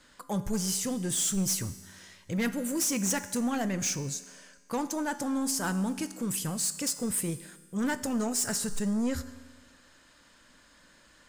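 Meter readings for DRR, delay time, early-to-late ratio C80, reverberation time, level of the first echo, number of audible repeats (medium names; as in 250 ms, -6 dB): 11.5 dB, no echo, 15.0 dB, 1.5 s, no echo, no echo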